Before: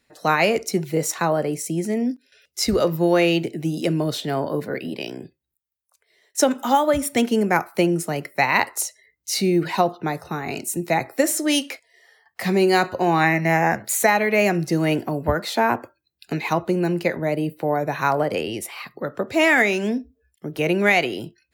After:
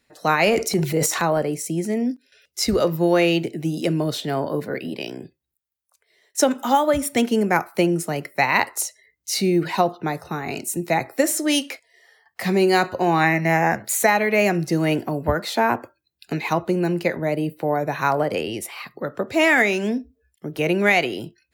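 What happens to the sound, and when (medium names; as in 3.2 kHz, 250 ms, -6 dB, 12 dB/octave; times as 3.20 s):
0.43–1.42 s: transient shaper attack 0 dB, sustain +10 dB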